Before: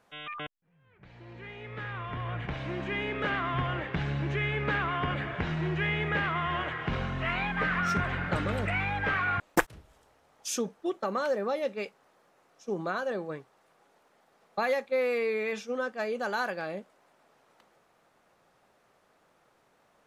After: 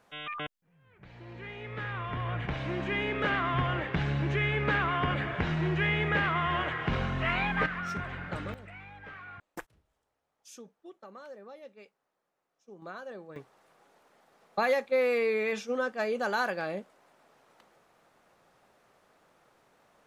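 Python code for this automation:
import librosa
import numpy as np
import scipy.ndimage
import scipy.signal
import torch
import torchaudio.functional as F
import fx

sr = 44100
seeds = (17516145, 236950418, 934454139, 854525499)

y = fx.gain(x, sr, db=fx.steps((0.0, 1.5), (7.66, -7.0), (8.54, -17.5), (12.82, -10.5), (13.36, 1.5)))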